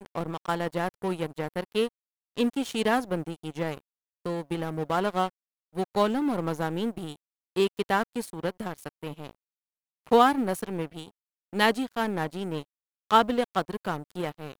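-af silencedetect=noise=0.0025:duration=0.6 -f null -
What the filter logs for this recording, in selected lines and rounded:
silence_start: 9.35
silence_end: 10.06 | silence_duration: 0.71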